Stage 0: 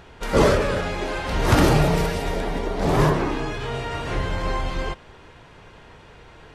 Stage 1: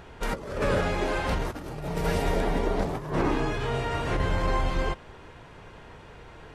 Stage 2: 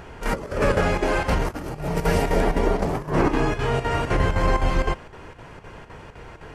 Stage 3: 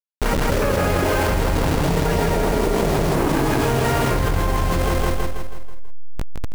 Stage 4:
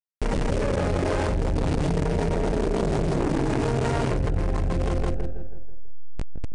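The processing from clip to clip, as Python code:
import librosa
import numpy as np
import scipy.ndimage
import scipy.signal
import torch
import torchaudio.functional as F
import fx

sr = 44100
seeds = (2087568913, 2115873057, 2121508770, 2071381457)

y1 = fx.peak_eq(x, sr, hz=4200.0, db=-3.5, octaves=2.0)
y1 = fx.over_compress(y1, sr, threshold_db=-23.0, ratio=-0.5)
y1 = F.gain(torch.from_numpy(y1), -2.5).numpy()
y2 = fx.peak_eq(y1, sr, hz=3700.0, db=-7.0, octaves=0.29)
y2 = fx.chopper(y2, sr, hz=3.9, depth_pct=60, duty_pct=80)
y2 = F.gain(torch.from_numpy(y2), 6.0).numpy()
y3 = fx.delta_hold(y2, sr, step_db=-25.5)
y3 = fx.echo_feedback(y3, sr, ms=162, feedback_pct=48, wet_db=-5.5)
y3 = fx.env_flatten(y3, sr, amount_pct=100)
y3 = F.gain(torch.from_numpy(y3), -4.0).numpy()
y4 = fx.wiener(y3, sr, points=41)
y4 = np.repeat(y4[::3], 3)[:len(y4)]
y4 = scipy.signal.sosfilt(scipy.signal.butter(16, 9900.0, 'lowpass', fs=sr, output='sos'), y4)
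y4 = F.gain(torch.from_numpy(y4), -3.5).numpy()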